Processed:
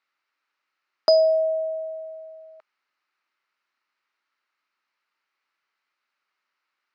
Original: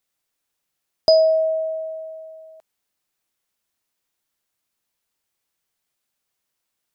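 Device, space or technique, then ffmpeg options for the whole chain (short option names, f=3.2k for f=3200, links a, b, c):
phone earpiece: -af "highpass=480,equalizer=f=480:t=q:w=4:g=-8,equalizer=f=700:t=q:w=4:g=-8,equalizer=f=1.3k:t=q:w=4:g=7,equalizer=f=2.1k:t=q:w=4:g=3,equalizer=f=3.4k:t=q:w=4:g=-9,lowpass=f=4.1k:w=0.5412,lowpass=f=4.1k:w=1.3066,volume=5dB"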